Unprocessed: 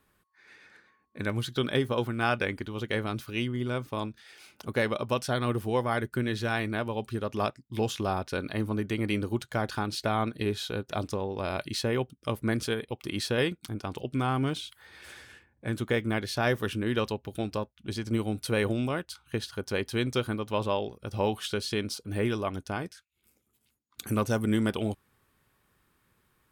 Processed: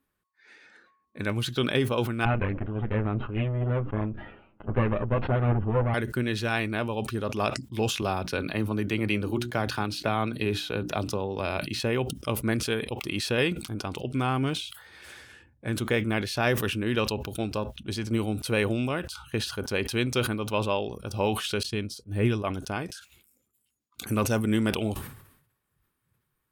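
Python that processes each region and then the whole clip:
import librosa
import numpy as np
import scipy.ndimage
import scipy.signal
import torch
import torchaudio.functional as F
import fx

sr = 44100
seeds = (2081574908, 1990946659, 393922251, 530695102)

y = fx.chain(x, sr, fx.lower_of_two(delay_ms=9.7),
    fx.gaussian_blur(sigma=4.0),
    fx.low_shelf(hz=330.0, db=5.5), at=(2.25, 5.94))
y = fx.chain(y, sr, fx.peak_eq(hz=7800.0, db=-4.0, octaves=0.7),
    fx.hum_notches(base_hz=60, count=6),
    fx.band_squash(depth_pct=40), at=(8.02, 11.8))
y = fx.chain(y, sr, fx.low_shelf(hz=190.0, db=11.0),
    fx.upward_expand(threshold_db=-42.0, expansion=2.5), at=(21.63, 22.44))
y = fx.noise_reduce_blind(y, sr, reduce_db=12)
y = fx.dynamic_eq(y, sr, hz=2600.0, q=5.8, threshold_db=-54.0, ratio=4.0, max_db=7)
y = fx.sustainer(y, sr, db_per_s=76.0)
y = F.gain(torch.from_numpy(y), 1.0).numpy()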